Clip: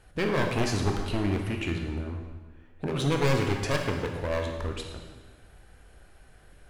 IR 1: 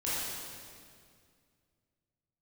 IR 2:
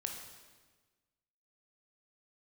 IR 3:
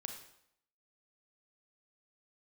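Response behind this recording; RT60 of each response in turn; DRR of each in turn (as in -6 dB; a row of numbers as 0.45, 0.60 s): 2; 2.1, 1.4, 0.75 s; -10.5, 2.0, 4.0 dB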